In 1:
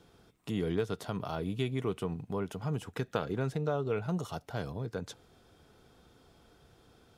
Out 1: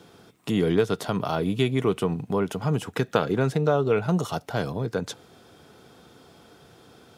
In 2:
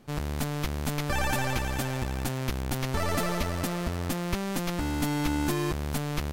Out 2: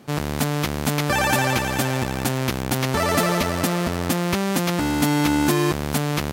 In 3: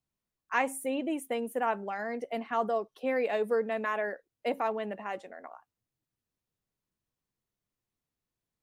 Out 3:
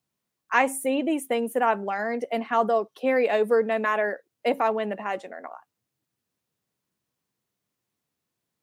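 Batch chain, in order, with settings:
high-pass 120 Hz 12 dB/octave; peak normalisation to -6 dBFS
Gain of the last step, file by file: +10.5 dB, +9.0 dB, +7.0 dB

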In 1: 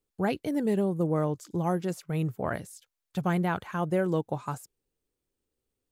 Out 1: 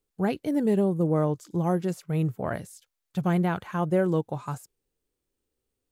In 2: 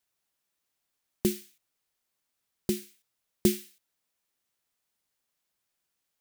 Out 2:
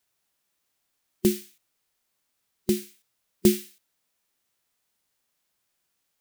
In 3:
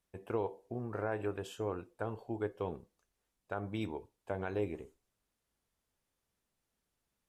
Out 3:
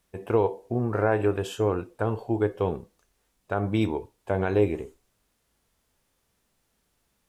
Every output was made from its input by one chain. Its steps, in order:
harmonic-percussive split harmonic +5 dB; normalise loudness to -27 LUFS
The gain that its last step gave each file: -1.5 dB, +2.0 dB, +9.0 dB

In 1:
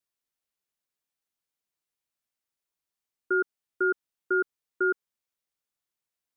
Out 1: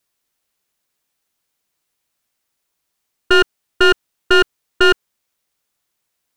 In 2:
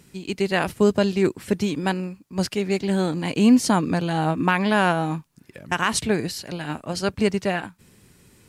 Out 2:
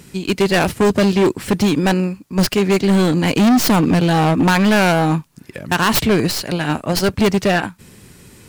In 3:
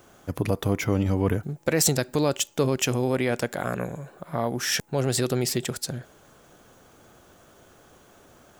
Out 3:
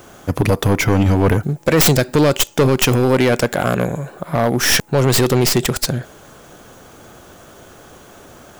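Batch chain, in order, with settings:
tracing distortion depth 0.15 ms; overload inside the chain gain 20.5 dB; normalise loudness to -16 LUFS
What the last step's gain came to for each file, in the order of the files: +14.5 dB, +10.5 dB, +12.0 dB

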